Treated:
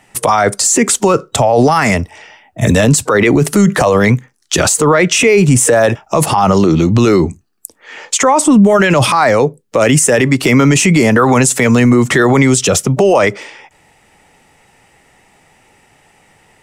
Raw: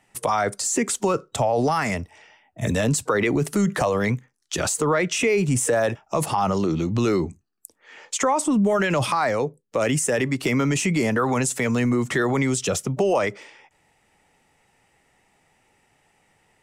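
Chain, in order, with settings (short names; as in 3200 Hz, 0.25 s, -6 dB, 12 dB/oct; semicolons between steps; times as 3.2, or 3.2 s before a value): maximiser +14.5 dB; gain -1 dB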